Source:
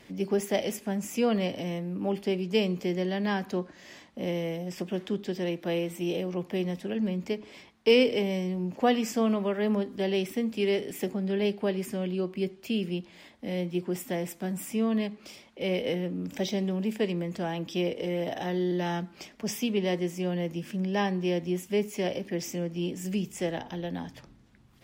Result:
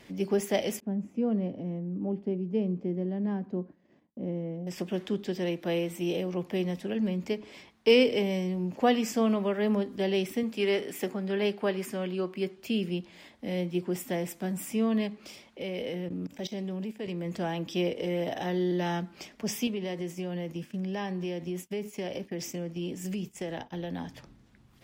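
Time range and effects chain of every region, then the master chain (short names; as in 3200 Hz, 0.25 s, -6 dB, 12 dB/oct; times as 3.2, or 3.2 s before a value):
0.8–4.67 band-pass 200 Hz, Q 0.82 + expander -53 dBFS
10.43–12.58 HPF 210 Hz 6 dB/oct + dynamic EQ 1300 Hz, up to +6 dB, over -48 dBFS, Q 1.2
15.61–17.26 level quantiser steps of 17 dB + mismatched tape noise reduction decoder only
19.67–24.03 expander -37 dBFS + compressor 4:1, threshold -30 dBFS
whole clip: dry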